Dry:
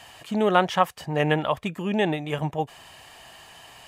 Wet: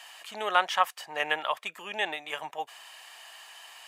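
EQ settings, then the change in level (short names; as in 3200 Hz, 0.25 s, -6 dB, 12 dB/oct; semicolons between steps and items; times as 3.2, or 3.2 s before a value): HPF 960 Hz 12 dB/oct; 0.0 dB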